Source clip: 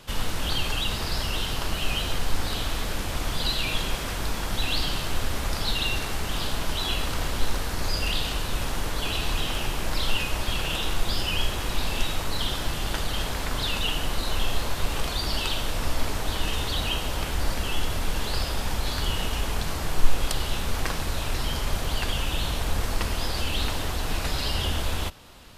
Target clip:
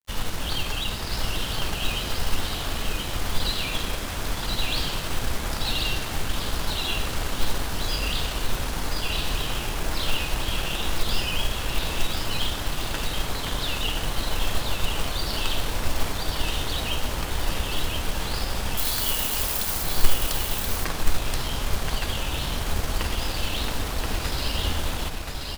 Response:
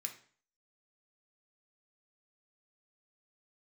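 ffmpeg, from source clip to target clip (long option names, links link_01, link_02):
-filter_complex "[0:a]acrusher=bits=5:mode=log:mix=0:aa=0.000001,asettb=1/sr,asplit=3[link_01][link_02][link_03];[link_01]atrim=end=18.774[link_04];[link_02]atrim=start=18.77:end=19.82,asetpts=PTS-STARTPTS,afade=type=in:duration=0.004:curve=qsin,afade=type=out:start_time=1.046:duration=0.004:curve=qsin,aemphasis=mode=production:type=bsi[link_05];[link_03]atrim=start=19.816[link_06];[link_04][link_05]acrossfade=duration=0.004:curve1=hsin:curve2=qsin[link_07];[link_07][link_06]acrossfade=duration=0.004:curve1=qsin:curve2=hsin,aeval=exprs='sgn(val(0))*max(abs(val(0))-0.01,0)':channel_layout=same,asplit=2[link_08][link_09];[link_09]aecho=0:1:1028:0.631[link_10];[link_08][link_10]amix=inputs=2:normalize=0"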